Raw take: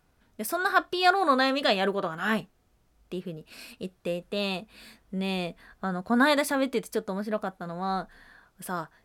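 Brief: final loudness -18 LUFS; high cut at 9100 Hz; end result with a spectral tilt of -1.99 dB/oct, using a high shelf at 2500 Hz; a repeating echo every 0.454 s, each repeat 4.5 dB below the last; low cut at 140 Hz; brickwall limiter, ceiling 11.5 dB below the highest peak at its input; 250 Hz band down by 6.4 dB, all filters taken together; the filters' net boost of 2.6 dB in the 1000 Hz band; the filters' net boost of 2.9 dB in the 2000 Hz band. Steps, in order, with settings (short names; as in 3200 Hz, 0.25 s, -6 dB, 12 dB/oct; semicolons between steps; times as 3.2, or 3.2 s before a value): HPF 140 Hz; LPF 9100 Hz; bell 250 Hz -7.5 dB; bell 1000 Hz +4 dB; bell 2000 Hz +6 dB; high shelf 2500 Hz -8.5 dB; limiter -17 dBFS; feedback echo 0.454 s, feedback 60%, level -4.5 dB; gain +11.5 dB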